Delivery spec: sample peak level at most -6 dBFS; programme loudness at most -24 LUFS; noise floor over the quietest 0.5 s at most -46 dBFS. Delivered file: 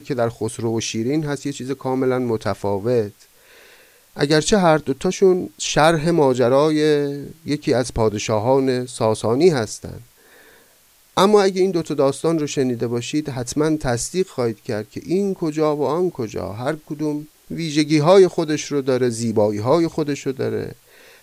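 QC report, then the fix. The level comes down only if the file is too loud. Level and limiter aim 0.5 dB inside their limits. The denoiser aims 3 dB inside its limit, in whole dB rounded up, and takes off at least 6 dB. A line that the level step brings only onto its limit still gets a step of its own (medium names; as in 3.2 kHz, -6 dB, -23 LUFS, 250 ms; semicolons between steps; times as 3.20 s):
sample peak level -2.5 dBFS: fail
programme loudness -19.5 LUFS: fail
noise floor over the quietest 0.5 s -54 dBFS: pass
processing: trim -5 dB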